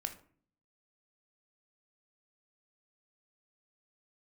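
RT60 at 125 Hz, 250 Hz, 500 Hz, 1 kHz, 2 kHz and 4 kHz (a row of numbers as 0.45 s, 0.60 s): 0.80 s, 0.75 s, 0.55 s, 0.45 s, 0.40 s, 0.30 s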